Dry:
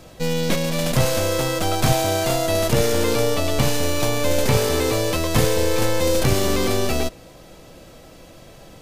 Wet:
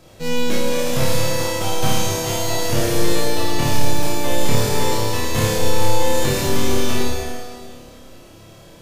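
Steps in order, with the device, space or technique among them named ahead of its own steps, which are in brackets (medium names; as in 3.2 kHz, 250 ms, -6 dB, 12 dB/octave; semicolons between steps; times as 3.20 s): tunnel (flutter echo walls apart 4.9 m, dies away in 0.5 s; reverberation RT60 2.0 s, pre-delay 16 ms, DRR -1 dB); trim -5.5 dB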